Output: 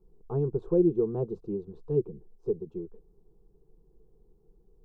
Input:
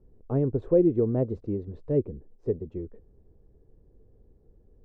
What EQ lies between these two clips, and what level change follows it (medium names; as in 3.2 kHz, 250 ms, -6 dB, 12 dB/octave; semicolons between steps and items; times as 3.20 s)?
peaking EQ 110 Hz -10 dB 0.32 oct; static phaser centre 390 Hz, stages 8; 0.0 dB